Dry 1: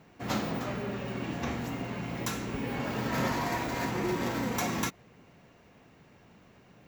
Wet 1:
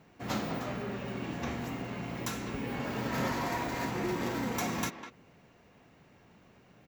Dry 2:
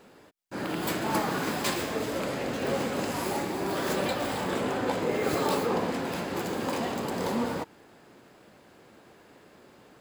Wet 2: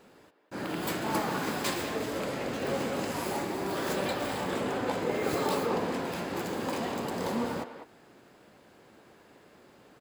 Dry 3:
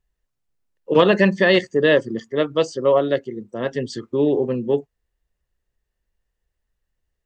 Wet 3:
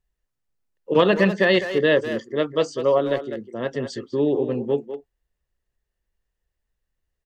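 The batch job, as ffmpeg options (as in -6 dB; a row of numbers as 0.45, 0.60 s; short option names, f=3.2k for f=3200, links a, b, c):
-filter_complex "[0:a]asplit=2[a][b];[b]adelay=200,highpass=300,lowpass=3.4k,asoftclip=type=hard:threshold=-12dB,volume=-9dB[c];[a][c]amix=inputs=2:normalize=0,volume=-2.5dB"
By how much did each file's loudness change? -2.0, -2.0, -2.0 LU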